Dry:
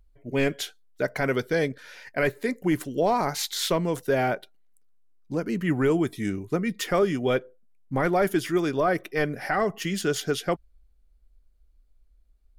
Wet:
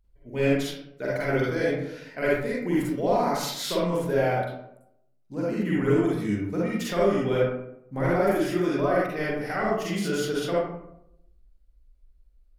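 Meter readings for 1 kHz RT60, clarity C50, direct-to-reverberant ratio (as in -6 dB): 0.70 s, -3.5 dB, -7.0 dB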